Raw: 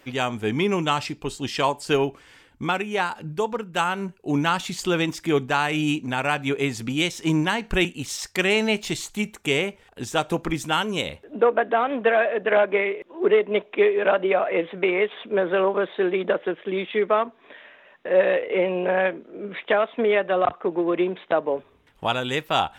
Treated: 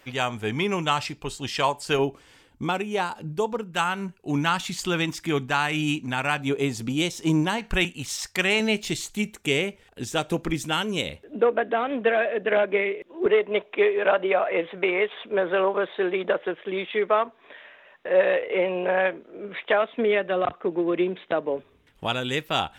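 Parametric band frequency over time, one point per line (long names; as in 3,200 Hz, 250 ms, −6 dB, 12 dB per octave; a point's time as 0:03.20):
parametric band −5.5 dB 1.4 octaves
290 Hz
from 0:01.99 1,800 Hz
from 0:03.71 470 Hz
from 0:06.40 1,900 Hz
from 0:07.58 330 Hz
from 0:08.60 980 Hz
from 0:13.26 230 Hz
from 0:19.82 890 Hz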